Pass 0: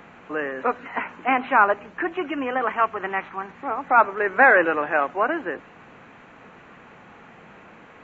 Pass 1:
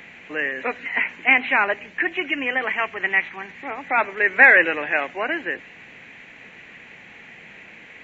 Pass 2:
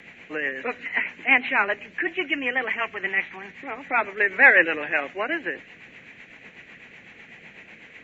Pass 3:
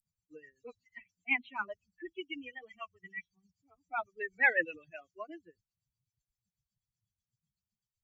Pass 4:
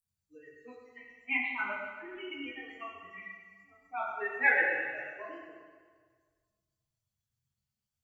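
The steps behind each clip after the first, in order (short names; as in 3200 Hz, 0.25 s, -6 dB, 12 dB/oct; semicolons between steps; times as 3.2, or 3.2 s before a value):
resonant high shelf 1600 Hz +8 dB, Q 3; gain -2 dB
rotary speaker horn 8 Hz
per-bin expansion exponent 3; gain -8.5 dB
reverb RT60 1.7 s, pre-delay 6 ms, DRR -7 dB; gain -5.5 dB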